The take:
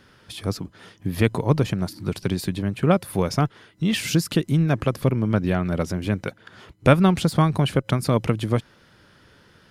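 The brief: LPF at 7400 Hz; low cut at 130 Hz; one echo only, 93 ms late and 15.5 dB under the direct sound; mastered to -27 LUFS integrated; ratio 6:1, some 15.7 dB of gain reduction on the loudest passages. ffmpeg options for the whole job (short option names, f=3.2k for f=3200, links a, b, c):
-af "highpass=130,lowpass=7.4k,acompressor=threshold=-28dB:ratio=6,aecho=1:1:93:0.168,volume=6.5dB"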